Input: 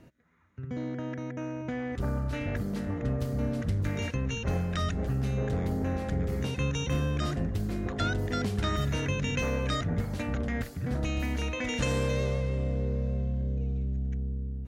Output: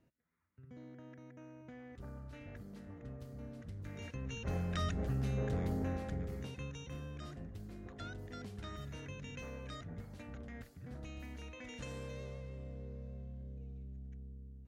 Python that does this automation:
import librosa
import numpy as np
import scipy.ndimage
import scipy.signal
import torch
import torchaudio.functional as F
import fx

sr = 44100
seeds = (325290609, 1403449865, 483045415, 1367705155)

y = fx.gain(x, sr, db=fx.line((3.73, -18.0), (4.7, -6.0), (5.79, -6.0), (6.84, -17.0)))